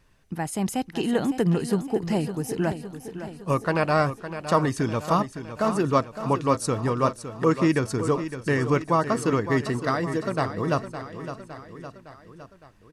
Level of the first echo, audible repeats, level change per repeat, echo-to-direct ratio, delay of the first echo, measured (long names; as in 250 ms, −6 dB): −11.0 dB, 4, −5.0 dB, −9.5 dB, 561 ms